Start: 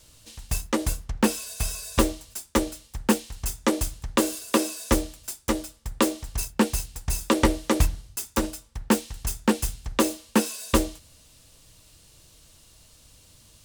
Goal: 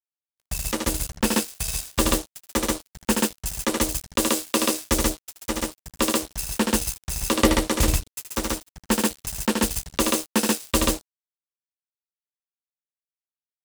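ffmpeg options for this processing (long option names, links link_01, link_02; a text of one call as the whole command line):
ffmpeg -i in.wav -af "aecho=1:1:75.8|134.1:0.631|0.891,aeval=exprs='sgn(val(0))*max(abs(val(0))-0.0335,0)':channel_layout=same,adynamicequalizer=threshold=0.00794:dfrequency=2300:dqfactor=0.7:tfrequency=2300:tqfactor=0.7:attack=5:release=100:ratio=0.375:range=3:mode=boostabove:tftype=highshelf,volume=-1dB" out.wav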